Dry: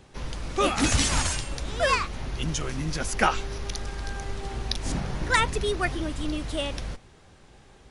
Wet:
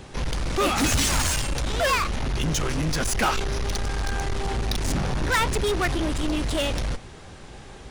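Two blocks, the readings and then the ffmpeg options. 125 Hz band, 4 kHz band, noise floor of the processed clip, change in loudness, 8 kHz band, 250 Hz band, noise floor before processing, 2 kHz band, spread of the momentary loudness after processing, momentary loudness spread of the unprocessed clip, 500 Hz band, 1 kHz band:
+4.0 dB, +2.5 dB, −43 dBFS, +2.5 dB, +3.0 dB, +3.5 dB, −54 dBFS, +1.5 dB, 11 LU, 12 LU, +2.5 dB, +1.5 dB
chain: -af "asoftclip=type=tanh:threshold=-23.5dB,aeval=exprs='0.0668*(cos(1*acos(clip(val(0)/0.0668,-1,1)))-cos(1*PI/2))+0.00944*(cos(5*acos(clip(val(0)/0.0668,-1,1)))-cos(5*PI/2))':channel_layout=same,volume=6dB"

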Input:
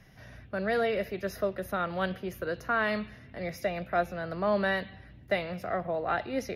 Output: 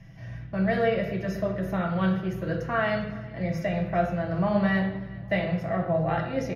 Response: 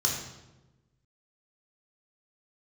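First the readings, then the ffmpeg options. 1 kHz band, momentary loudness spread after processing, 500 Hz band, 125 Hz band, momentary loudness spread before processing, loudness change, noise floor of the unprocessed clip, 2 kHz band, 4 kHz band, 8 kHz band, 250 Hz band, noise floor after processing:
+1.5 dB, 7 LU, +2.5 dB, +12.5 dB, 10 LU, +4.0 dB, −52 dBFS, +1.0 dB, 0.0 dB, can't be measured, +9.0 dB, −40 dBFS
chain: -filter_complex "[0:a]bass=frequency=250:gain=4,treble=frequency=4000:gain=-10,aecho=1:1:6.1:0.36,aecho=1:1:402|804|1206:0.0708|0.0354|0.0177,asplit=2[link_01][link_02];[1:a]atrim=start_sample=2205,asetrate=52920,aresample=44100[link_03];[link_02][link_03]afir=irnorm=-1:irlink=0,volume=-9dB[link_04];[link_01][link_04]amix=inputs=2:normalize=0,volume=1.5dB"

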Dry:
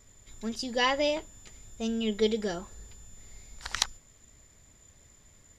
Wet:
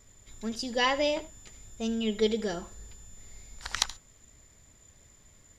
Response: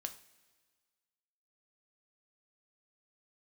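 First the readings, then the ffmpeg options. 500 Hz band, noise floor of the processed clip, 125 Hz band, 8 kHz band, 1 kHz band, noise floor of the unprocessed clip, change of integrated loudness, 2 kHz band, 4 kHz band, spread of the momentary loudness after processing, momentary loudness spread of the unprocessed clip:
0.0 dB, −59 dBFS, 0.0 dB, +0.5 dB, 0.0 dB, −59 dBFS, 0.0 dB, 0.0 dB, 0.0 dB, 23 LU, 21 LU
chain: -filter_complex "[0:a]asplit=2[link_01][link_02];[1:a]atrim=start_sample=2205,atrim=end_sample=3087,adelay=76[link_03];[link_02][link_03]afir=irnorm=-1:irlink=0,volume=-14dB[link_04];[link_01][link_04]amix=inputs=2:normalize=0"

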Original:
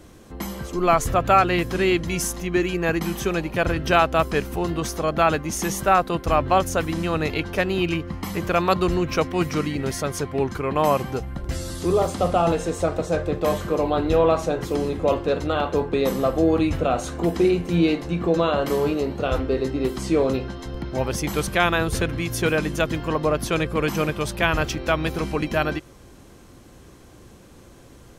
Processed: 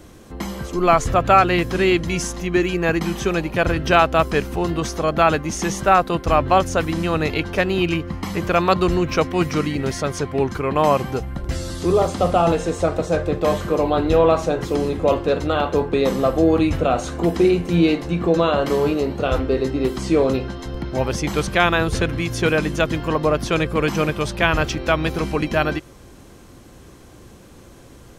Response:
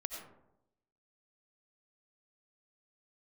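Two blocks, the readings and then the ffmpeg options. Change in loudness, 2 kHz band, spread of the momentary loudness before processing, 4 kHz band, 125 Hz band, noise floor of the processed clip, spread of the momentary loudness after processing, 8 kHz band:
+3.0 dB, +3.0 dB, 7 LU, +3.0 dB, +3.0 dB, −44 dBFS, 7 LU, 0.0 dB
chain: -filter_complex "[0:a]acrossover=split=7900[link_01][link_02];[link_02]acompressor=threshold=-51dB:ratio=4:attack=1:release=60[link_03];[link_01][link_03]amix=inputs=2:normalize=0,volume=3dB"

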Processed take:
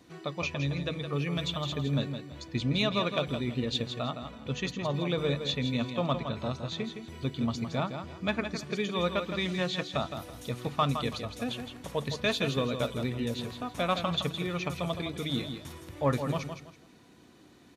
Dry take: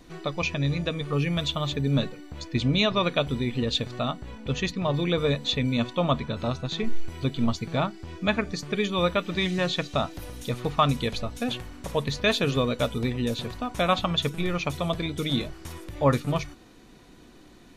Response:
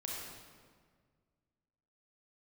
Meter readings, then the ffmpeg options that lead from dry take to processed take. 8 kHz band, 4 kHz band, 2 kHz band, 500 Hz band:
−4.5 dB, −5.0 dB, −5.0 dB, −5.0 dB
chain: -filter_complex "[0:a]highpass=frequency=70:width=0.5412,highpass=frequency=70:width=1.3066,asplit=2[link_01][link_02];[link_02]volume=18dB,asoftclip=hard,volume=-18dB,volume=-11dB[link_03];[link_01][link_03]amix=inputs=2:normalize=0,aecho=1:1:164|328|492:0.398|0.104|0.0269,volume=-7.5dB"

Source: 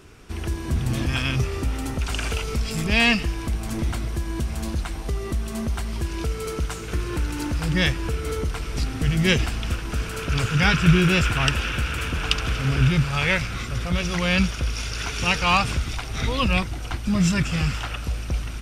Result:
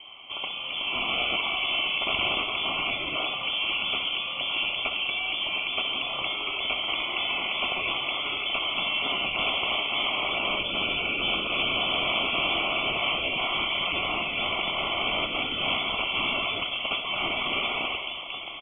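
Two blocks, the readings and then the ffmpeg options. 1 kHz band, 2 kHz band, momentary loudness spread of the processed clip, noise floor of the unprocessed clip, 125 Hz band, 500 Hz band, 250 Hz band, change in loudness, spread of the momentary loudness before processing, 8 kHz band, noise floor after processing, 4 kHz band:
−1.0 dB, −0.5 dB, 4 LU, −32 dBFS, −24.0 dB, −4.0 dB, −14.5 dB, −2.0 dB, 10 LU, below −40 dB, −35 dBFS, +5.0 dB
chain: -af "highpass=310,afftfilt=real='re*lt(hypot(re,im),0.0708)':imag='im*lt(hypot(re,im),0.0708)':win_size=1024:overlap=0.75,equalizer=frequency=1900:width=2.1:gain=-3.5,aecho=1:1:2.5:0.4,adynamicequalizer=threshold=0.00282:dfrequency=2500:dqfactor=3.7:tfrequency=2500:tqfactor=3.7:attack=5:release=100:ratio=0.375:range=2:mode=cutabove:tftype=bell,dynaudnorm=framelen=170:gausssize=11:maxgain=5.5dB,acrusher=bits=11:mix=0:aa=0.000001,aecho=1:1:66|132|198|264:0.282|0.121|0.0521|0.0224,lowpass=frequency=3000:width_type=q:width=0.5098,lowpass=frequency=3000:width_type=q:width=0.6013,lowpass=frequency=3000:width_type=q:width=0.9,lowpass=frequency=3000:width_type=q:width=2.563,afreqshift=-3500,asuperstop=centerf=1700:order=8:qfactor=2.2,volume=6.5dB"

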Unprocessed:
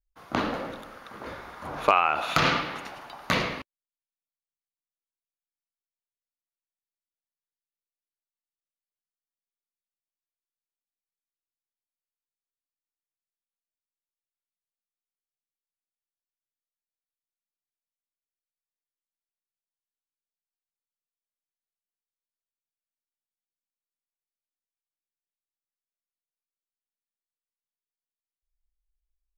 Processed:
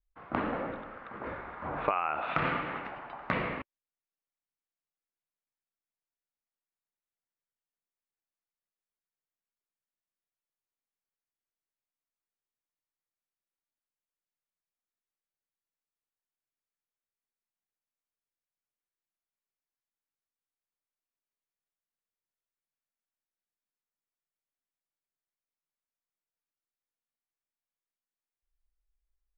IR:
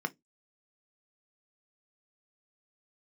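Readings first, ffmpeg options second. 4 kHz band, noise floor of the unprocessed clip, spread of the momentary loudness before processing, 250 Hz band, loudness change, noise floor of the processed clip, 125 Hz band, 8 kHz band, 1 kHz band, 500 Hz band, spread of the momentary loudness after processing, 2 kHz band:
−16.0 dB, below −85 dBFS, 19 LU, −4.0 dB, −8.5 dB, below −85 dBFS, −5.0 dB, below −25 dB, −6.5 dB, −5.0 dB, 12 LU, −6.5 dB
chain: -af "lowpass=frequency=2400:width=0.5412,lowpass=frequency=2400:width=1.3066,acompressor=threshold=-29dB:ratio=2.5"

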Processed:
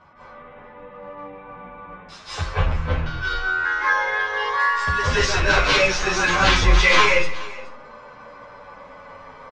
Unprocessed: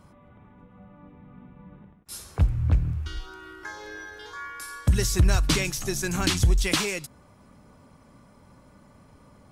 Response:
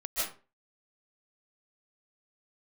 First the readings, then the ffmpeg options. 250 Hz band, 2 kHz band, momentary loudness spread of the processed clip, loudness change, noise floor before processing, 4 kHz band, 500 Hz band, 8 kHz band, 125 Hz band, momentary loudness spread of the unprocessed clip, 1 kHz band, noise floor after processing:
−0.5 dB, +15.5 dB, 22 LU, +6.5 dB, −55 dBFS, +8.0 dB, +10.0 dB, 0.0 dB, −1.0 dB, 18 LU, +16.5 dB, −44 dBFS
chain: -filter_complex "[0:a]aemphasis=mode=reproduction:type=50kf,asplit=2[link_01][link_02];[link_02]highpass=frequency=720:poles=1,volume=23dB,asoftclip=type=tanh:threshold=-11dB[link_03];[link_01][link_03]amix=inputs=2:normalize=0,lowpass=frequency=1400:poles=1,volume=-6dB,equalizer=frequency=250:width_type=o:width=2.5:gain=-11.5[link_04];[1:a]atrim=start_sample=2205,asetrate=35721,aresample=44100[link_05];[link_04][link_05]afir=irnorm=-1:irlink=0,asplit=2[link_06][link_07];[link_07]aeval=exprs='sgn(val(0))*max(abs(val(0))-0.02,0)':channel_layout=same,volume=-11dB[link_08];[link_06][link_08]amix=inputs=2:normalize=0,lowpass=frequency=6500:width=0.5412,lowpass=frequency=6500:width=1.3066,aecho=1:1:422:0.119,asplit=2[link_09][link_10];[link_10]adelay=9.1,afreqshift=-0.42[link_11];[link_09][link_11]amix=inputs=2:normalize=1,volume=3.5dB"

